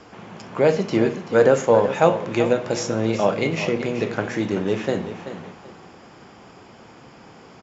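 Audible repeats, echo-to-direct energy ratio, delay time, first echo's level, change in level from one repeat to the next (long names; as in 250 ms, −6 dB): 2, −11.0 dB, 383 ms, −11.5 dB, −12.5 dB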